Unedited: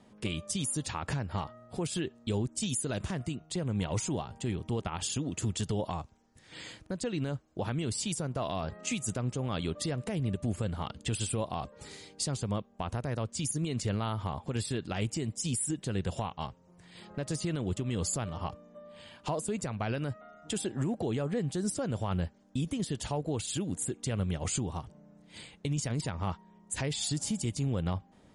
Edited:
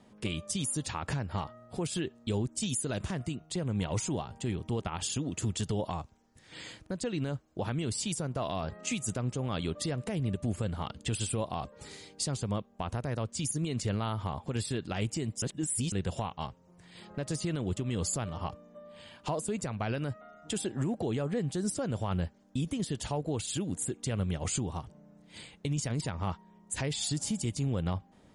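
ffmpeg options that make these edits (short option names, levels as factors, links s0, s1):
-filter_complex "[0:a]asplit=3[s0][s1][s2];[s0]atrim=end=15.422[s3];[s1]atrim=start=15.418:end=15.922,asetpts=PTS-STARTPTS,areverse[s4];[s2]atrim=start=15.918[s5];[s3][s4]acrossfade=d=0.004:c1=hsin:c2=hsin[s6];[s6][s5]acrossfade=d=0.004:c1=hsin:c2=hsin"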